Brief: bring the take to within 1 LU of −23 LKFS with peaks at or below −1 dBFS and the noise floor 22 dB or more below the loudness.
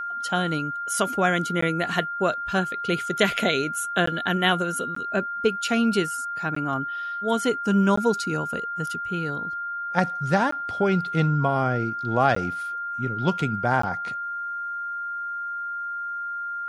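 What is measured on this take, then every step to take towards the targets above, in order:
number of dropouts 8; longest dropout 14 ms; interfering tone 1,400 Hz; level of the tone −28 dBFS; integrated loudness −25.0 LKFS; sample peak −6.0 dBFS; target loudness −23.0 LKFS
→ repair the gap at 0:01.61/0:04.06/0:04.95/0:06.55/0:07.96/0:10.51/0:12.35/0:13.82, 14 ms
notch filter 1,400 Hz, Q 30
level +2 dB

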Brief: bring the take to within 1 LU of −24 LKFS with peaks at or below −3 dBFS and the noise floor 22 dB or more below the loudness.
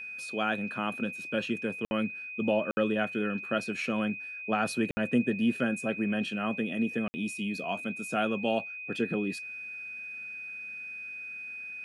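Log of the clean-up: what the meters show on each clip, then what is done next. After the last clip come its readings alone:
number of dropouts 4; longest dropout 60 ms; interfering tone 2,500 Hz; level of the tone −38 dBFS; integrated loudness −31.5 LKFS; sample peak −15.0 dBFS; target loudness −24.0 LKFS
→ repair the gap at 0:01.85/0:02.71/0:04.91/0:07.08, 60 ms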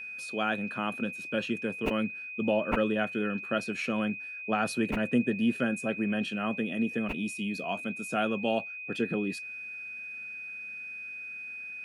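number of dropouts 0; interfering tone 2,500 Hz; level of the tone −38 dBFS
→ notch filter 2,500 Hz, Q 30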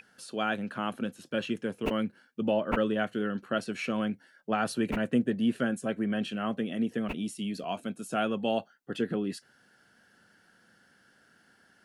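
interfering tone none found; integrated loudness −31.5 LKFS; sample peak −15.0 dBFS; target loudness −24.0 LKFS
→ level +7.5 dB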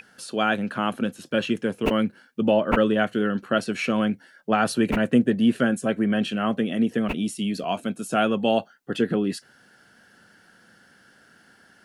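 integrated loudness −24.0 LKFS; sample peak −7.5 dBFS; background noise floor −57 dBFS

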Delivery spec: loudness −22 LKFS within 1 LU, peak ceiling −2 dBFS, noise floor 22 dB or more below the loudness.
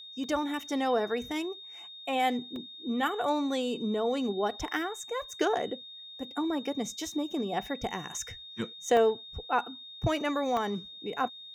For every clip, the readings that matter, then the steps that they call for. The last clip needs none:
number of dropouts 4; longest dropout 1.7 ms; interfering tone 3,700 Hz; level of the tone −44 dBFS; integrated loudness −31.5 LKFS; sample peak −14.0 dBFS; target loudness −22.0 LKFS
→ repair the gap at 0:00.24/0:02.56/0:08.97/0:10.57, 1.7 ms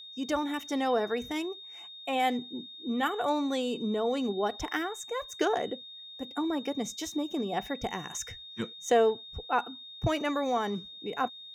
number of dropouts 0; interfering tone 3,700 Hz; level of the tone −44 dBFS
→ notch filter 3,700 Hz, Q 30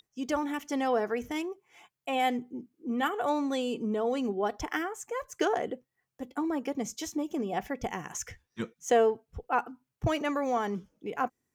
interfering tone none found; integrated loudness −31.5 LKFS; sample peak −13.5 dBFS; target loudness −22.0 LKFS
→ level +9.5 dB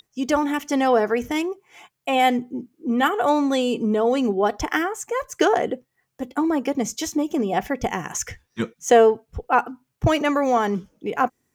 integrated loudness −22.0 LKFS; sample peak −4.0 dBFS; background noise floor −76 dBFS

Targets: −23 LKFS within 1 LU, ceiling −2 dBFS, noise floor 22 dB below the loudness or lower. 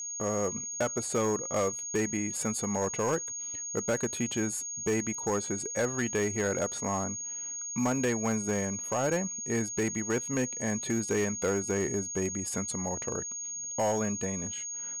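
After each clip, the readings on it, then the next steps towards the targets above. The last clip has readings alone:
share of clipped samples 0.9%; peaks flattened at −22.5 dBFS; interfering tone 6,600 Hz; level of the tone −35 dBFS; integrated loudness −30.5 LKFS; sample peak −22.5 dBFS; target loudness −23.0 LKFS
→ clipped peaks rebuilt −22.5 dBFS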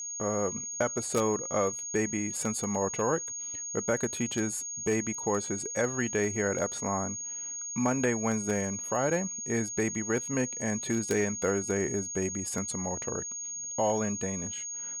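share of clipped samples 0.0%; interfering tone 6,600 Hz; level of the tone −35 dBFS
→ notch filter 6,600 Hz, Q 30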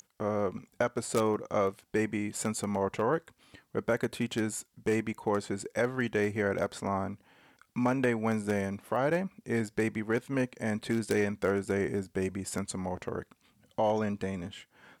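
interfering tone none found; integrated loudness −32.0 LKFS; sample peak −14.0 dBFS; target loudness −23.0 LKFS
→ level +9 dB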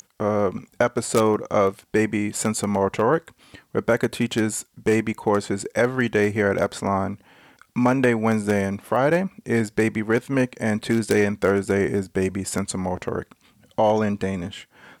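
integrated loudness −23.0 LKFS; sample peak −5.0 dBFS; background noise floor −63 dBFS

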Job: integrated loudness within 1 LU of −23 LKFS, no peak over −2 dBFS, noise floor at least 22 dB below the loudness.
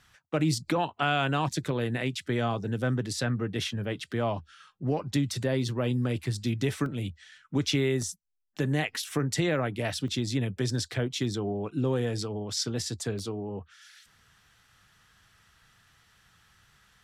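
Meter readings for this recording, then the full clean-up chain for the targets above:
number of dropouts 4; longest dropout 1.2 ms; integrated loudness −30.0 LKFS; sample peak −14.5 dBFS; target loudness −23.0 LKFS
→ repair the gap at 0:06.86/0:08.02/0:10.08/0:13.19, 1.2 ms
level +7 dB

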